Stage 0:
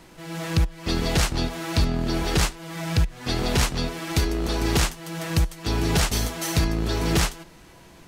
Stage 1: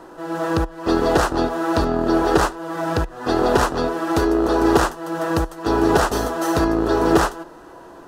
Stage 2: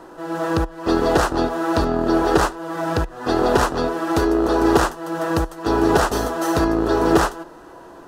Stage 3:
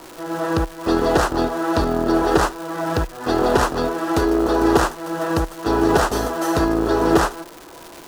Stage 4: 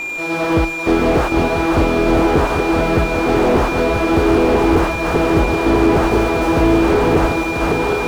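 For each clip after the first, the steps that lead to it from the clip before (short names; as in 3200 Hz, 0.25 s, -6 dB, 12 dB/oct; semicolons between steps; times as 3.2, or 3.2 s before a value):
band shelf 660 Hz +15 dB 2.9 oct; notch 2200 Hz, Q 5.6; gain -3.5 dB
nothing audible
crackle 540/s -29 dBFS
regenerating reverse delay 0.496 s, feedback 74%, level -5.5 dB; whine 2400 Hz -25 dBFS; slew limiter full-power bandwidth 93 Hz; gain +4.5 dB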